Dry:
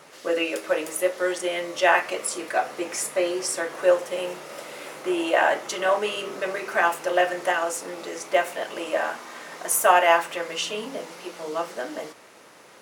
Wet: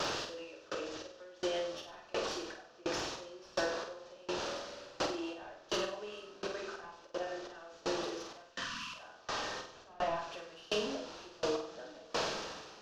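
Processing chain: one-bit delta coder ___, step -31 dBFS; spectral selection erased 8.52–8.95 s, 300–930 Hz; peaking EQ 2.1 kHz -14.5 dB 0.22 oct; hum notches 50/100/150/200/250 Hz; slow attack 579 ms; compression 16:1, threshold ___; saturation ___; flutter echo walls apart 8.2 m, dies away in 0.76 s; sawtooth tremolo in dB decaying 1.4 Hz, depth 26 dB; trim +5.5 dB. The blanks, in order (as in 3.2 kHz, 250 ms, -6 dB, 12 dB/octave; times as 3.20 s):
32 kbps, -34 dBFS, -30.5 dBFS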